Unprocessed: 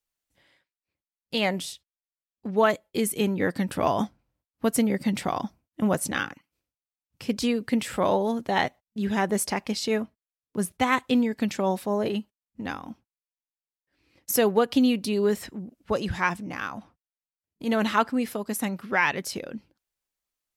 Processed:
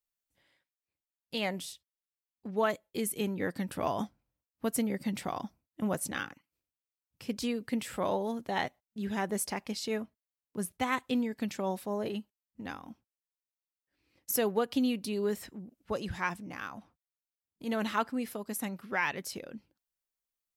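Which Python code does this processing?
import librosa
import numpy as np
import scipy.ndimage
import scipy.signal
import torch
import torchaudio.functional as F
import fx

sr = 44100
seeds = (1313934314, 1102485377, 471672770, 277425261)

y = fx.high_shelf(x, sr, hz=12000.0, db=7.5)
y = y * librosa.db_to_amplitude(-8.0)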